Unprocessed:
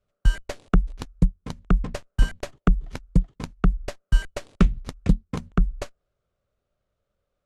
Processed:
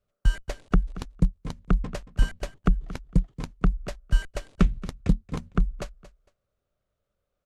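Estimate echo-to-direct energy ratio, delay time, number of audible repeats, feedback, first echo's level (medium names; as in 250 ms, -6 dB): -16.5 dB, 228 ms, 2, 21%, -16.5 dB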